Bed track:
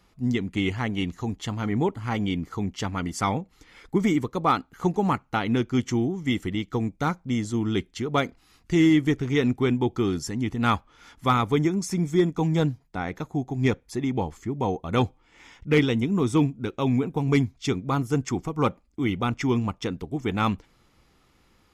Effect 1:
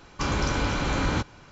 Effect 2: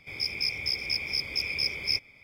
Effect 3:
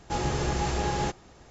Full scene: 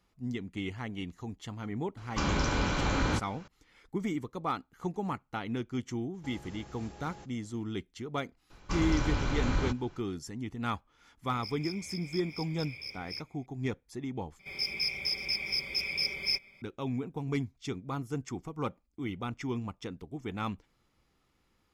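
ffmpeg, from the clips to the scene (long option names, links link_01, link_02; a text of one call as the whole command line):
ffmpeg -i bed.wav -i cue0.wav -i cue1.wav -i cue2.wav -filter_complex "[1:a]asplit=2[link_01][link_02];[2:a]asplit=2[link_03][link_04];[0:a]volume=-11dB[link_05];[3:a]alimiter=level_in=2dB:limit=-24dB:level=0:latency=1:release=125,volume=-2dB[link_06];[link_02]lowshelf=frequency=65:gain=11[link_07];[link_04]aecho=1:1:5.2:0.67[link_08];[link_05]asplit=2[link_09][link_10];[link_09]atrim=end=14.394[link_11];[link_08]atrim=end=2.23,asetpts=PTS-STARTPTS,volume=-4dB[link_12];[link_10]atrim=start=16.616[link_13];[link_01]atrim=end=1.51,asetpts=PTS-STARTPTS,volume=-3.5dB,afade=type=in:duration=0.004:curve=hsin,afade=type=out:start_time=1.506:duration=0.004:curve=hsin,adelay=1970[link_14];[link_06]atrim=end=1.5,asetpts=PTS-STARTPTS,volume=-14.5dB,afade=type=in:duration=0.004:curve=hsin,afade=type=out:start_time=1.496:duration=0.004:curve=hsin,adelay=6140[link_15];[link_07]atrim=end=1.51,asetpts=PTS-STARTPTS,volume=-8dB,afade=type=in:duration=0.004:curve=hsin,afade=type=out:start_time=1.506:duration=0.004:curve=hsin,adelay=374850S[link_16];[link_03]atrim=end=2.23,asetpts=PTS-STARTPTS,volume=-14dB,afade=type=in:duration=0.004:curve=hsin,afade=type=out:start_time=2.226:duration=0.004:curve=hsin,adelay=11230[link_17];[link_11][link_12]acrossfade=duration=0.004:curve1=hsin:curve2=hsin[link_18];[link_18][link_13]acrossfade=duration=0.004:curve1=hsin:curve2=hsin[link_19];[link_19][link_14][link_15][link_16][link_17]amix=inputs=5:normalize=0" out.wav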